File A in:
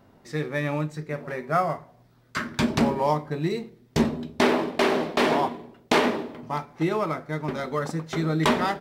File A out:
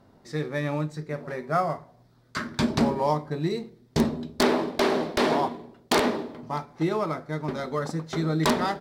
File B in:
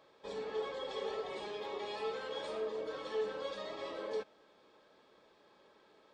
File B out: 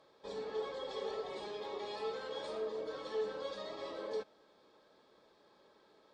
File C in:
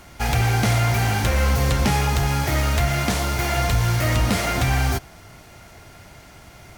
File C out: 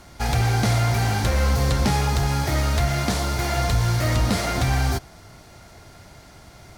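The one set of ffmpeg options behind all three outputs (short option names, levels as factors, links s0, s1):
-af "aeval=exprs='(mod(2.99*val(0)+1,2)-1)/2.99':c=same,aexciter=amount=2.9:drive=6.4:freq=3800,aemphasis=mode=reproduction:type=75fm,volume=0.841"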